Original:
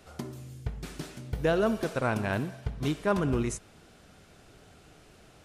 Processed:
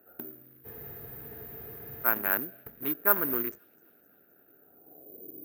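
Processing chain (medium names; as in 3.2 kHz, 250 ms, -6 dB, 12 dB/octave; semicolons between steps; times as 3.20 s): local Wiener filter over 41 samples; peaking EQ 310 Hz +11.5 dB 1.5 oct; short-mantissa float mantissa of 4-bit; band-pass sweep 1.5 kHz -> 340 Hz, 4.59–5.35 s; on a send: feedback echo behind a high-pass 259 ms, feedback 63%, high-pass 4.5 kHz, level -18 dB; on the sum: careless resampling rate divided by 3×, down filtered, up zero stuff; spectral freeze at 0.67 s, 1.39 s; trim +6 dB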